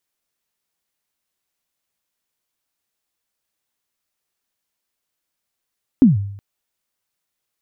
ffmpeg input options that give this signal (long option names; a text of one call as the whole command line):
ffmpeg -f lavfi -i "aevalsrc='0.631*pow(10,-3*t/0.71)*sin(2*PI*(290*0.15/log(100/290)*(exp(log(100/290)*min(t,0.15)/0.15)-1)+100*max(t-0.15,0)))':duration=0.37:sample_rate=44100" out.wav